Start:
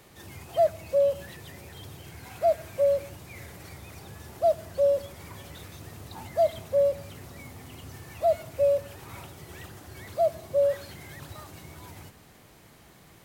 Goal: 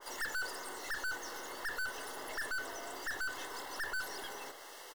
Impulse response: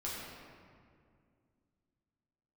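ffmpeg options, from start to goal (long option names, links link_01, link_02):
-filter_complex "[0:a]highpass=84,acrossover=split=150|7200[link_01][link_02][link_03];[link_01]acrusher=bits=4:mix=0:aa=0.000001[link_04];[link_03]alimiter=level_in=25.5dB:limit=-24dB:level=0:latency=1,volume=-25.5dB[link_05];[link_04][link_02][link_05]amix=inputs=3:normalize=0,asetrate=118188,aresample=44100,aeval=exprs='(tanh(126*val(0)+0.45)-tanh(0.45))/126':channel_layout=same,asuperstop=centerf=2400:order=8:qfactor=5.5,asplit=2[link_06][link_07];[link_07]aecho=0:1:306:0.119[link_08];[link_06][link_08]amix=inputs=2:normalize=0,adynamicequalizer=threshold=0.00126:dfrequency=1900:dqfactor=0.7:tfrequency=1900:tqfactor=0.7:attack=5:release=100:ratio=0.375:range=2:mode=cutabove:tftype=highshelf,volume=7.5dB"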